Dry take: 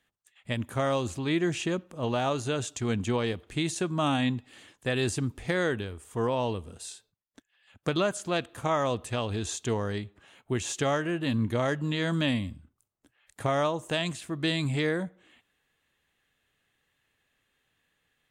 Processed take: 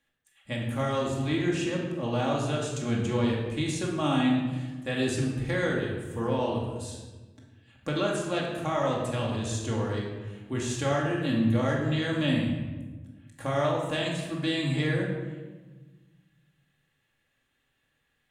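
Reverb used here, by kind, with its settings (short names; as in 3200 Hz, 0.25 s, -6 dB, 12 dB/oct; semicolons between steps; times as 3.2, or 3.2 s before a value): shoebox room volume 950 m³, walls mixed, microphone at 2.3 m; gain -5 dB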